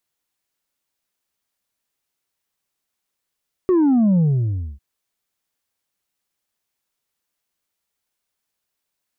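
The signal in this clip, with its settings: sub drop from 380 Hz, over 1.10 s, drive 3 dB, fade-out 0.61 s, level -13 dB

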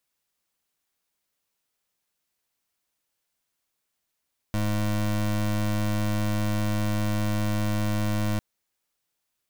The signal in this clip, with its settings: pulse 105 Hz, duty 25% -25 dBFS 3.85 s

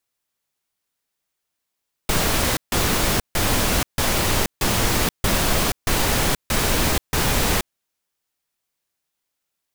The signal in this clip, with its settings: noise bursts pink, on 0.48 s, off 0.15 s, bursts 9, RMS -19.5 dBFS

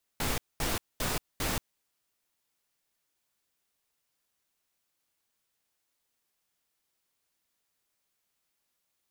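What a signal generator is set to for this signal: noise bursts pink, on 0.18 s, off 0.22 s, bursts 4, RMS -30.5 dBFS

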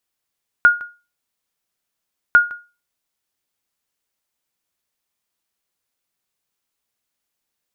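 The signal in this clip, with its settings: sonar ping 1.43 kHz, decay 0.30 s, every 1.70 s, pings 2, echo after 0.16 s, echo -21.5 dB -3 dBFS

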